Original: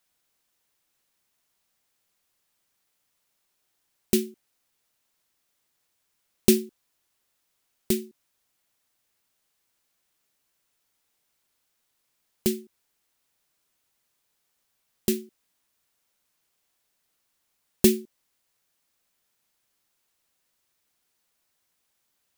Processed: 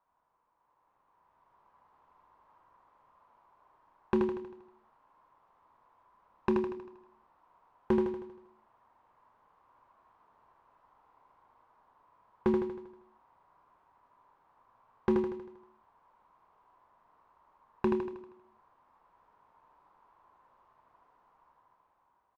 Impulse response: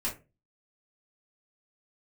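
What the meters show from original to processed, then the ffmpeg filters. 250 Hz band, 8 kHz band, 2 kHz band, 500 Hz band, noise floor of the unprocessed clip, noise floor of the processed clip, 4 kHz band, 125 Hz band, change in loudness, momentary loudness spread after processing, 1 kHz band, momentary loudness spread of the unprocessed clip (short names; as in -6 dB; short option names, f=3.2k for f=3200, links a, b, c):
-5.0 dB, under -35 dB, -4.0 dB, -2.5 dB, -76 dBFS, -73 dBFS, under -20 dB, -6.5 dB, -7.5 dB, 18 LU, +13.0 dB, 11 LU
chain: -filter_complex "[0:a]equalizer=f=200:t=o:w=1.6:g=-3.5,acompressor=threshold=-25dB:ratio=6,alimiter=limit=-13dB:level=0:latency=1:release=323,dynaudnorm=f=510:g=5:m=11.5dB,lowpass=f=1k:t=q:w=6.7,asoftclip=type=tanh:threshold=-20dB,asplit=2[a][b];[b]adelay=28,volume=-13dB[c];[a][c]amix=inputs=2:normalize=0,aecho=1:1:79|158|237|316|395|474|553:0.631|0.328|0.171|0.0887|0.0461|0.024|0.0125"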